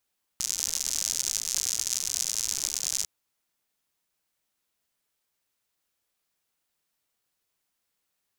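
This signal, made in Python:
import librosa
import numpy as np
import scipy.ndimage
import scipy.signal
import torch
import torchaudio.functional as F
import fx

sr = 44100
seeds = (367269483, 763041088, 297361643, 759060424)

y = fx.rain(sr, seeds[0], length_s=2.65, drops_per_s=110.0, hz=6300.0, bed_db=-22.5)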